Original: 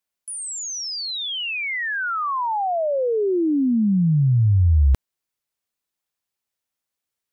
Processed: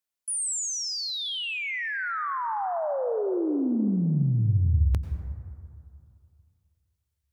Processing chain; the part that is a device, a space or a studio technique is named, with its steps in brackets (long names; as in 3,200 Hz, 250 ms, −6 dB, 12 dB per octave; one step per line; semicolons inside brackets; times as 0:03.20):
0:01.65–0:02.17: high-pass filter 560 Hz → 260 Hz
exciter from parts (in parallel at −6 dB: high-pass filter 3,400 Hz 6 dB per octave + soft clipping −25.5 dBFS, distortion −25 dB)
on the sum: dynamic equaliser 9,100 Hz, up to +6 dB, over −43 dBFS, Q 1.1
dense smooth reverb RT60 2.5 s, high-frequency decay 0.3×, pre-delay 80 ms, DRR 7.5 dB
level −7 dB